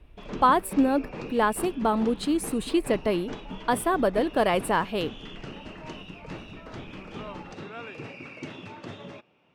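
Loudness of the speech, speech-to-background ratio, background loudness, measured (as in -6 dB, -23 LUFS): -25.5 LUFS, 15.0 dB, -40.5 LUFS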